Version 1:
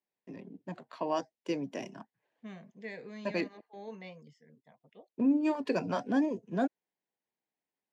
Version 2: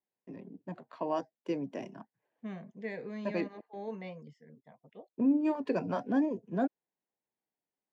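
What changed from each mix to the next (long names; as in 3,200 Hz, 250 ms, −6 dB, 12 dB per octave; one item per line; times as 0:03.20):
second voice +5.0 dB
master: add high-shelf EQ 2,600 Hz −11.5 dB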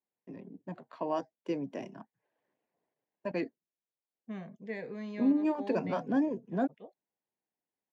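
second voice: entry +1.85 s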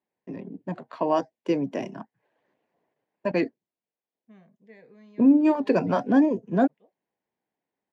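first voice +9.5 dB
second voice −11.5 dB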